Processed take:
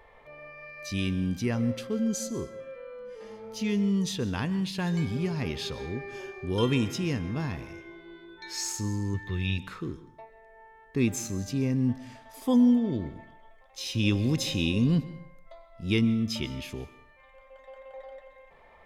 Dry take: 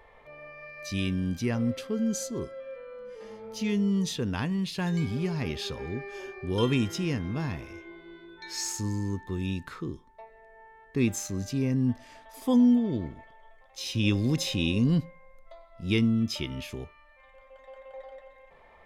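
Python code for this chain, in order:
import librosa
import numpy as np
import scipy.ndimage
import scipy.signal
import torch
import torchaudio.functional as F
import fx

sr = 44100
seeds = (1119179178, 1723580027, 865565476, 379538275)

y = fx.graphic_eq(x, sr, hz=(125, 250, 1000, 2000, 4000, 8000), db=(9, -9, -4, 10, 8, -12), at=(9.14, 9.58))
y = fx.rev_plate(y, sr, seeds[0], rt60_s=0.59, hf_ratio=0.85, predelay_ms=115, drr_db=16.0)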